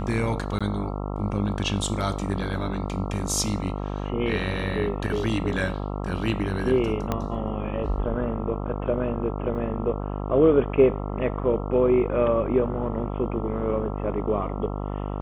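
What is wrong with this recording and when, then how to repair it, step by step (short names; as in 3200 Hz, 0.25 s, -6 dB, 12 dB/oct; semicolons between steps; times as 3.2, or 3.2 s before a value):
buzz 50 Hz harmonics 27 -30 dBFS
0.59–0.61 gap 16 ms
7.12 pop -12 dBFS
9.55 gap 2.4 ms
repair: de-click; de-hum 50 Hz, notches 27; interpolate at 0.59, 16 ms; interpolate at 9.55, 2.4 ms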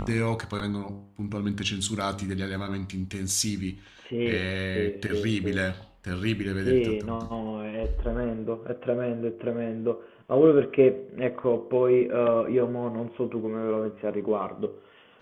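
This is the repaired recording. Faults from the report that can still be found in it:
7.12 pop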